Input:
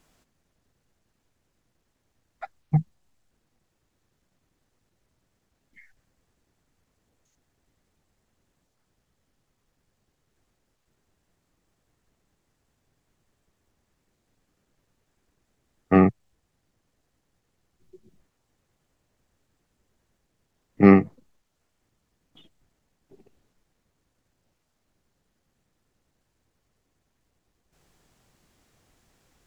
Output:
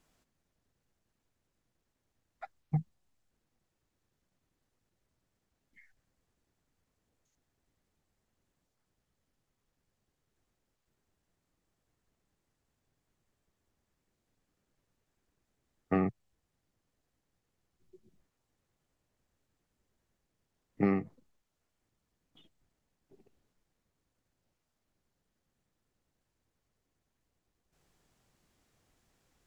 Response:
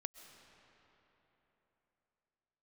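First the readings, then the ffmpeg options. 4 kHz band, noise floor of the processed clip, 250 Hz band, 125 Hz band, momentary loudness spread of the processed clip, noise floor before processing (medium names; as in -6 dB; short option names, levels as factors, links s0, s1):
no reading, -83 dBFS, -13.5 dB, -12.0 dB, 21 LU, -75 dBFS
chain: -af "acompressor=threshold=0.158:ratio=6,volume=0.398"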